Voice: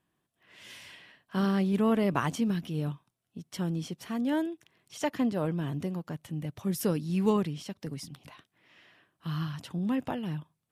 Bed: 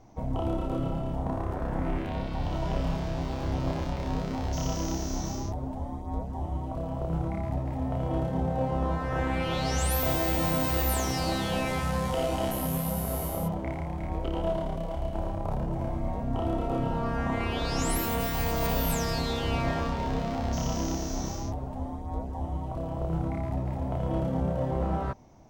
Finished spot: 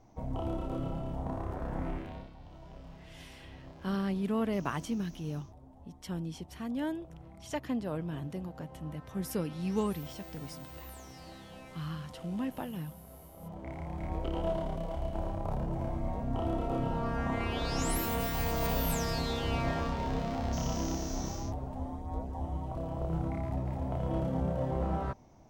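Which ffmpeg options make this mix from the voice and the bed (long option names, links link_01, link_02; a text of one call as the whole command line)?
ffmpeg -i stem1.wav -i stem2.wav -filter_complex "[0:a]adelay=2500,volume=-5.5dB[link_01];[1:a]volume=11.5dB,afade=type=out:start_time=1.83:duration=0.52:silence=0.177828,afade=type=in:start_time=13.37:duration=0.69:silence=0.141254[link_02];[link_01][link_02]amix=inputs=2:normalize=0" out.wav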